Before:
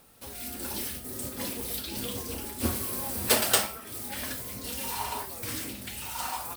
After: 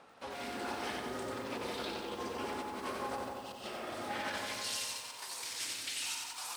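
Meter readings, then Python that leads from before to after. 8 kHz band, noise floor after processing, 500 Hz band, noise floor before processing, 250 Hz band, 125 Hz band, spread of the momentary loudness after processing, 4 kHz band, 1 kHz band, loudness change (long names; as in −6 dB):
−10.0 dB, −48 dBFS, −4.0 dB, −43 dBFS, −6.5 dB, −13.5 dB, 6 LU, −5.5 dB, −3.5 dB, −8.5 dB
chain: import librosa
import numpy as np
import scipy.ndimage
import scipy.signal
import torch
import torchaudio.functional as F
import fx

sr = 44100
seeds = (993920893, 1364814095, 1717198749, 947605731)

p1 = scipy.signal.sosfilt(scipy.signal.butter(2, 7600.0, 'lowpass', fs=sr, output='sos'), x)
p2 = fx.spec_repair(p1, sr, seeds[0], start_s=3.16, length_s=0.79, low_hz=310.0, high_hz=2500.0, source='both')
p3 = fx.over_compress(p2, sr, threshold_db=-39.0, ratio=-0.5)
p4 = fx.filter_sweep_bandpass(p3, sr, from_hz=990.0, to_hz=6000.0, start_s=4.19, end_s=4.69, q=0.71)
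p5 = p4 + fx.echo_wet_lowpass(p4, sr, ms=164, feedback_pct=55, hz=1400.0, wet_db=-4.0, dry=0)
p6 = fx.echo_crushed(p5, sr, ms=91, feedback_pct=55, bits=10, wet_db=-4.0)
y = p6 * librosa.db_to_amplitude(3.0)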